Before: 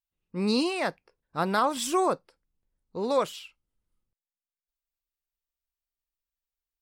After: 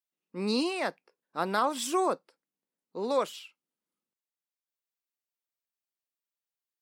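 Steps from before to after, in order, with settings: HPF 200 Hz 24 dB/oct; gain -2.5 dB

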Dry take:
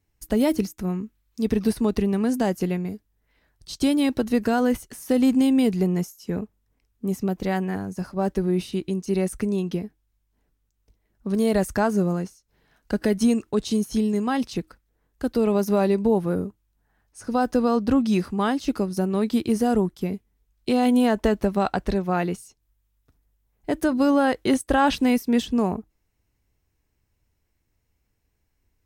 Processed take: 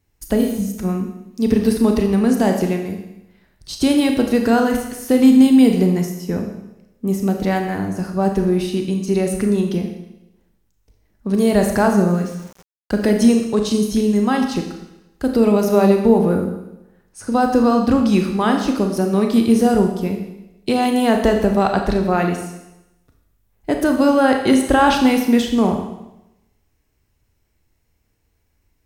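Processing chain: 0.43–0.67 spectral repair 220–12000 Hz both; Schroeder reverb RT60 0.91 s, combs from 27 ms, DRR 3.5 dB; 12.11–13.07 sample gate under -44 dBFS; gain +5 dB

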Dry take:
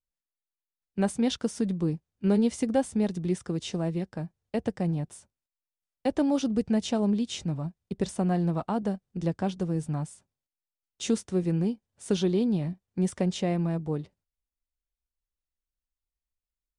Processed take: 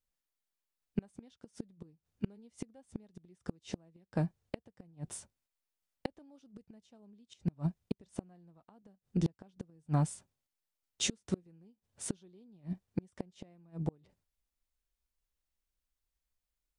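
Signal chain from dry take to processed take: flipped gate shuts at -23 dBFS, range -36 dB; gain +3 dB

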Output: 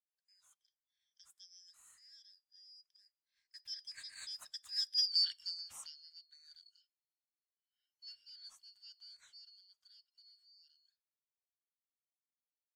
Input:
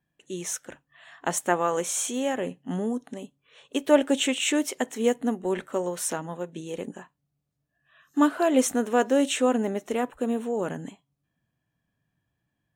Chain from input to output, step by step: four-band scrambler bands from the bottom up 4321; Doppler pass-by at 5.11, 19 m/s, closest 1.2 m

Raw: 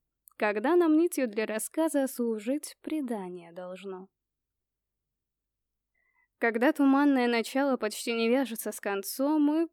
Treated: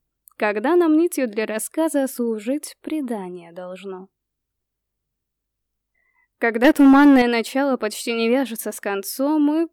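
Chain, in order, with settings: 6.64–7.22 sample leveller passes 2; gain +7 dB

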